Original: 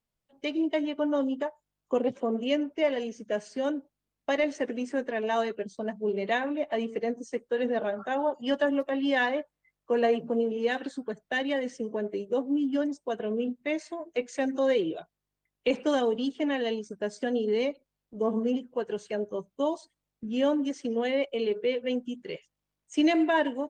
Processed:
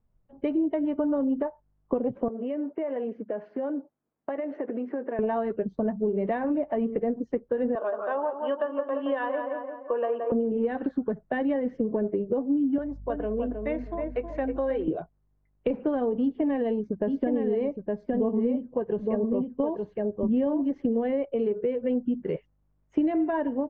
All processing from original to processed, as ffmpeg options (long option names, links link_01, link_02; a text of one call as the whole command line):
ffmpeg -i in.wav -filter_complex "[0:a]asettb=1/sr,asplit=3[link_01][link_02][link_03];[link_01]atrim=end=2.284[link_04];[link_02]atrim=start=2.28:end=5.19,asetpts=PTS-STARTPTS,afade=type=in:duration=0.004:curve=qsin,afade=type=out:start_time=2.906:duration=0.004:curve=qsin,acompressor=threshold=-33dB:ratio=12:attack=3.2:release=140:knee=1:detection=peak,highpass=310,lowpass=3100[link_05];[link_03]atrim=start=5.186[link_06];[link_04][link_05]acrossfade=duration=0.004:curve1=hsin:curve2=qsin[link_07];[link_07][link_06]acrossfade=duration=0.004:curve1=qsin:curve2=hsin,asettb=1/sr,asplit=3[link_08][link_09][link_10];[link_08]atrim=end=7.754[link_11];[link_09]atrim=start=7.75:end=10.32,asetpts=PTS-STARTPTS,afade=type=in:duration=0.004:curve=qsin,afade=type=out:start_time=2.566:duration=0.004:curve=qsin,highpass=frequency=410:width=0.5412,highpass=frequency=410:width=1.3066,equalizer=frequency=440:width_type=q:width=4:gain=-4,equalizer=frequency=780:width_type=q:width=4:gain=-7,equalizer=frequency=1100:width_type=q:width=4:gain=8,equalizer=frequency=2100:width_type=q:width=4:gain=-8,equalizer=frequency=3000:width_type=q:width=4:gain=5,lowpass=frequency=3600:width=0.5412,lowpass=frequency=3600:width=1.3066,asplit=2[link_12][link_13];[link_13]adelay=171,lowpass=frequency=2200:poles=1,volume=-7dB,asplit=2[link_14][link_15];[link_15]adelay=171,lowpass=frequency=2200:poles=1,volume=0.5,asplit=2[link_16][link_17];[link_17]adelay=171,lowpass=frequency=2200:poles=1,volume=0.5,asplit=2[link_18][link_19];[link_19]adelay=171,lowpass=frequency=2200:poles=1,volume=0.5,asplit=2[link_20][link_21];[link_21]adelay=171,lowpass=frequency=2200:poles=1,volume=0.5,asplit=2[link_22][link_23];[link_23]adelay=171,lowpass=frequency=2200:poles=1,volume=0.5[link_24];[link_12][link_14][link_16][link_18][link_20][link_22][link_24]amix=inputs=7:normalize=0,atrim=end_sample=113337[link_25];[link_10]atrim=start=10.316[link_26];[link_11][link_25]acrossfade=duration=0.004:curve1=hsin:curve2=qsin[link_27];[link_27][link_26]acrossfade=duration=0.004:curve1=qsin:curve2=hsin,asettb=1/sr,asplit=3[link_28][link_29][link_30];[link_28]atrim=end=12.784[link_31];[link_29]atrim=start=12.78:end=14.88,asetpts=PTS-STARTPTS,afade=type=in:duration=0.004:curve=qsin,afade=type=out:start_time=2.096:duration=0.004:curve=qsin,highpass=frequency=870:poles=1,aeval=exprs='val(0)+0.001*(sin(2*PI*50*n/s)+sin(2*PI*2*50*n/s)/2+sin(2*PI*3*50*n/s)/3+sin(2*PI*4*50*n/s)/4+sin(2*PI*5*50*n/s)/5)':channel_layout=same,asplit=2[link_32][link_33];[link_33]adelay=316,lowpass=frequency=1200:poles=1,volume=-5.5dB,asplit=2[link_34][link_35];[link_35]adelay=316,lowpass=frequency=1200:poles=1,volume=0.28,asplit=2[link_36][link_37];[link_37]adelay=316,lowpass=frequency=1200:poles=1,volume=0.28,asplit=2[link_38][link_39];[link_39]adelay=316,lowpass=frequency=1200:poles=1,volume=0.28[link_40];[link_32][link_34][link_36][link_38][link_40]amix=inputs=5:normalize=0,atrim=end_sample=92610[link_41];[link_30]atrim=start=14.876[link_42];[link_31][link_41]acrossfade=duration=0.004:curve1=hsin:curve2=qsin[link_43];[link_43][link_42]acrossfade=duration=0.004:curve1=qsin:curve2=hsin,asettb=1/sr,asplit=3[link_44][link_45][link_46];[link_44]atrim=end=16.214[link_47];[link_45]atrim=start=16.21:end=21.03,asetpts=PTS-STARTPTS,afade=type=in:duration=0.004:curve=qsin,afade=type=out:start_time=4.816:duration=0.004:curve=qsin,bandreject=frequency=1400:width=5.6,aecho=1:1:864:0.562,atrim=end_sample=212562[link_48];[link_46]atrim=start=21.026[link_49];[link_47][link_48]acrossfade=duration=0.004:curve1=hsin:curve2=qsin[link_50];[link_50][link_49]acrossfade=duration=0.004:curve1=qsin:curve2=hsin,lowpass=1300,acompressor=threshold=-33dB:ratio=6,aemphasis=mode=reproduction:type=bsi,volume=7dB" out.wav